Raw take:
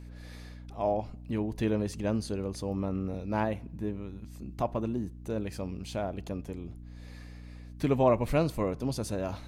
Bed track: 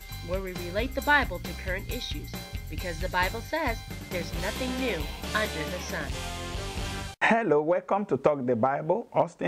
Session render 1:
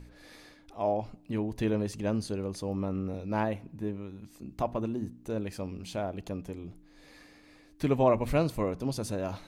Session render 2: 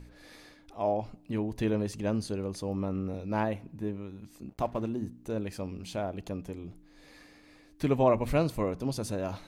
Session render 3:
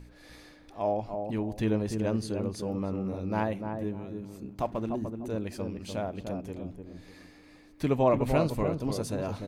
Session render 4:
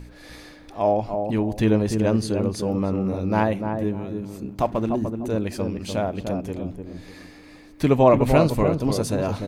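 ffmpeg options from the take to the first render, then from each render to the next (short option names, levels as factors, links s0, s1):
-af "bandreject=f=60:t=h:w=4,bandreject=f=120:t=h:w=4,bandreject=f=180:t=h:w=4,bandreject=f=240:t=h:w=4"
-filter_complex "[0:a]asplit=3[s0][s1][s2];[s0]afade=t=out:st=4.48:d=0.02[s3];[s1]aeval=exprs='sgn(val(0))*max(abs(val(0))-0.00211,0)':c=same,afade=t=in:st=4.48:d=0.02,afade=t=out:st=4.88:d=0.02[s4];[s2]afade=t=in:st=4.88:d=0.02[s5];[s3][s4][s5]amix=inputs=3:normalize=0"
-filter_complex "[0:a]asplit=2[s0][s1];[s1]adelay=297,lowpass=f=1000:p=1,volume=0.562,asplit=2[s2][s3];[s3]adelay=297,lowpass=f=1000:p=1,volume=0.3,asplit=2[s4][s5];[s5]adelay=297,lowpass=f=1000:p=1,volume=0.3,asplit=2[s6][s7];[s7]adelay=297,lowpass=f=1000:p=1,volume=0.3[s8];[s0][s2][s4][s6][s8]amix=inputs=5:normalize=0"
-af "volume=2.66"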